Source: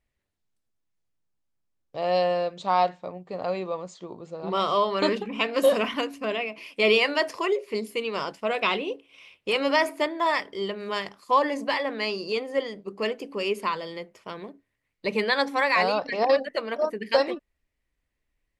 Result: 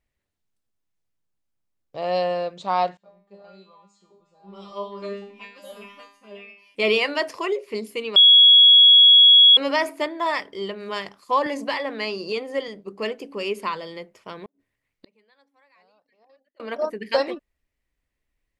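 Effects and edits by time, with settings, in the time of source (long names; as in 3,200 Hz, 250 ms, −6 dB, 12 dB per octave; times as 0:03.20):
0:02.97–0:06.75: tuned comb filter 200 Hz, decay 0.49 s, mix 100%
0:08.16–0:09.57: beep over 3,340 Hz −8 dBFS
0:11.46–0:12.68: multiband upward and downward compressor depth 40%
0:14.39–0:16.60: gate with flip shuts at −29 dBFS, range −38 dB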